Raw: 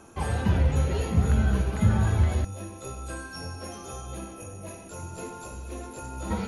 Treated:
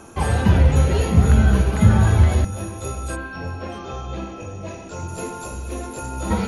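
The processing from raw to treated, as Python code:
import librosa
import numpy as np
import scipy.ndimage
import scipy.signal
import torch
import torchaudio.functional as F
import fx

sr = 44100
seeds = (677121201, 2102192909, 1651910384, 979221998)

y = fx.lowpass(x, sr, hz=fx.line((3.15, 3400.0), (5.07, 6800.0)), slope=24, at=(3.15, 5.07), fade=0.02)
y = y + 10.0 ** (-21.5 / 20.0) * np.pad(y, (int(628 * sr / 1000.0), 0))[:len(y)]
y = y * librosa.db_to_amplitude(8.0)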